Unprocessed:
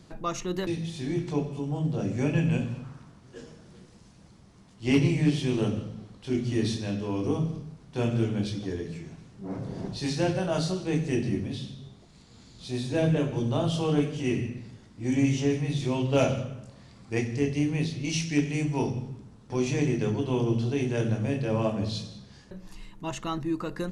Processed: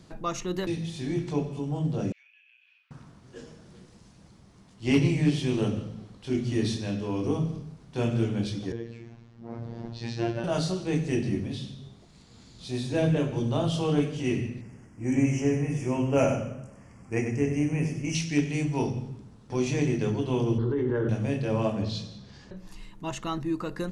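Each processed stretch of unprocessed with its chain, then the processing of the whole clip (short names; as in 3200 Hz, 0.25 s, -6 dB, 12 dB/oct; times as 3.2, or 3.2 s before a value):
2.12–2.91 ladder high-pass 2200 Hz, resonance 55% + compressor 10:1, threshold -52 dBFS + air absorption 270 m
8.72–10.44 robotiser 116 Hz + air absorption 130 m
14.61–18.15 Butterworth band-stop 3900 Hz, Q 1.3 + echo 96 ms -7.5 dB
20.58–21.09 LPF 2600 Hz 24 dB/oct + fixed phaser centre 680 Hz, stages 6 + fast leveller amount 100%
21.82–22.57 LPF 6500 Hz + upward compressor, threshold -42 dBFS
whole clip: dry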